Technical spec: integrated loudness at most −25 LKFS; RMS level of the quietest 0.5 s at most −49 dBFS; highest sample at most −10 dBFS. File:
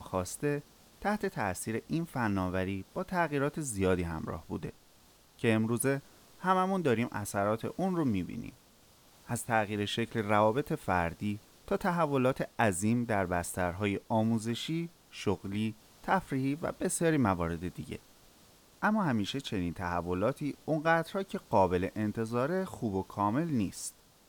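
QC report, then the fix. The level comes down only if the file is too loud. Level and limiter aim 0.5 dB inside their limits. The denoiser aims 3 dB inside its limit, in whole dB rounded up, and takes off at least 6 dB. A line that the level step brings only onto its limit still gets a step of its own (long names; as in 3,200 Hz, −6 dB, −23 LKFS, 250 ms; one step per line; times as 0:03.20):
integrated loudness −32.0 LKFS: in spec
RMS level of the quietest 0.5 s −61 dBFS: in spec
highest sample −13.0 dBFS: in spec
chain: no processing needed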